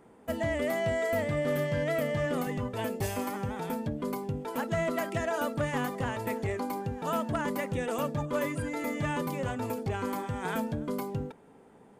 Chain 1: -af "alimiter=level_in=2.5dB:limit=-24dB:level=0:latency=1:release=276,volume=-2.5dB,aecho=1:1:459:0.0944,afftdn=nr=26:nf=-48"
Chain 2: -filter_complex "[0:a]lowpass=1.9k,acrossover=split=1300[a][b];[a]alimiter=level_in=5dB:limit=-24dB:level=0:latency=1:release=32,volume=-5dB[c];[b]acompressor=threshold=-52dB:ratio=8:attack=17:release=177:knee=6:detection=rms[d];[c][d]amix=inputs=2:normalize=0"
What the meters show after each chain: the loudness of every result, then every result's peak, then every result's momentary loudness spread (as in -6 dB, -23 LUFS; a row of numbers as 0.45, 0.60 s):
-36.0, -36.5 LUFS; -25.0, -27.0 dBFS; 3, 2 LU